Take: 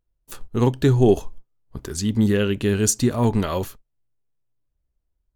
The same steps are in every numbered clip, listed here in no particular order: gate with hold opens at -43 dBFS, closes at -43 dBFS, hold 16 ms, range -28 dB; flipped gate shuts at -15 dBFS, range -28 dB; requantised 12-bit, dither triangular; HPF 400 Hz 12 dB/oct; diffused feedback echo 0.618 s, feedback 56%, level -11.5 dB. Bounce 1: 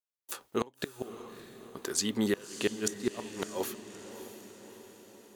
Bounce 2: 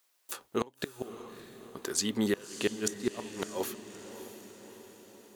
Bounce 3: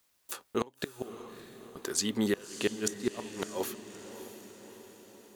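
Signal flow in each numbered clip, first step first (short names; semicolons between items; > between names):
requantised > gate with hold > HPF > flipped gate > diffused feedback echo; gate with hold > requantised > HPF > flipped gate > diffused feedback echo; HPF > gate with hold > requantised > flipped gate > diffused feedback echo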